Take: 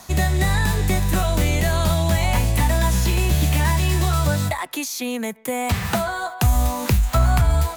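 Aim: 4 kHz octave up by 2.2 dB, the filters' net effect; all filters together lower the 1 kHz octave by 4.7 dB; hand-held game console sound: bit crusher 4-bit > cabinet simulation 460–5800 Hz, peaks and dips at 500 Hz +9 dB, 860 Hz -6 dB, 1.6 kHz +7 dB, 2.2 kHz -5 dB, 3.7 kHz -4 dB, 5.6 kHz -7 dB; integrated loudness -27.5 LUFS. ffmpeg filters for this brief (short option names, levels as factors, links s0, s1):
-af "equalizer=f=1000:t=o:g=-5,equalizer=f=4000:t=o:g=7,acrusher=bits=3:mix=0:aa=0.000001,highpass=460,equalizer=f=500:t=q:w=4:g=9,equalizer=f=860:t=q:w=4:g=-6,equalizer=f=1600:t=q:w=4:g=7,equalizer=f=2200:t=q:w=4:g=-5,equalizer=f=3700:t=q:w=4:g=-4,equalizer=f=5600:t=q:w=4:g=-7,lowpass=f=5800:w=0.5412,lowpass=f=5800:w=1.3066,volume=0.75"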